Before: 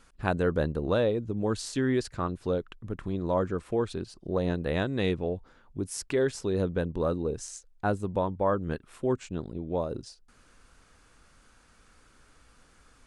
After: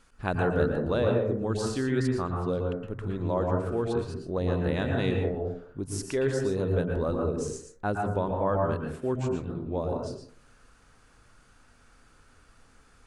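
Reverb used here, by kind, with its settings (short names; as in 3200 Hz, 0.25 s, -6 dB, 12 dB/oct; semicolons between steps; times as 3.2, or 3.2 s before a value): plate-style reverb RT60 0.58 s, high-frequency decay 0.25×, pre-delay 0.105 s, DRR 1 dB; gain -2 dB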